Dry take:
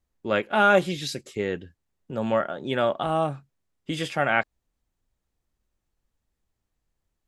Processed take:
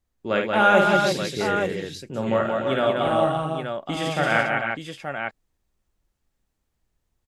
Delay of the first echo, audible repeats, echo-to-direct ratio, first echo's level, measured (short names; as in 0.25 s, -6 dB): 53 ms, 5, 1.5 dB, -5.0 dB